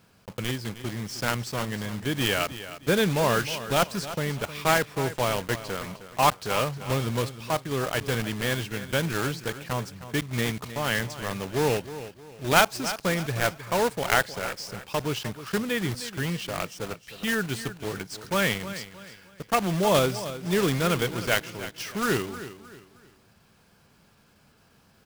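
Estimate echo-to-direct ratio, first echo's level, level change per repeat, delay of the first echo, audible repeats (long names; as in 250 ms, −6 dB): −13.0 dB, −13.5 dB, −9.5 dB, 311 ms, 3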